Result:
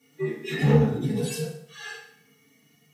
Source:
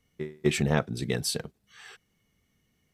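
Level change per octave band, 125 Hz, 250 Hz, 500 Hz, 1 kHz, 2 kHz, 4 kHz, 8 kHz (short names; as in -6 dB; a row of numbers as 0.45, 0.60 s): +7.0, +5.0, +4.0, +1.5, +1.0, -3.5, -4.0 dB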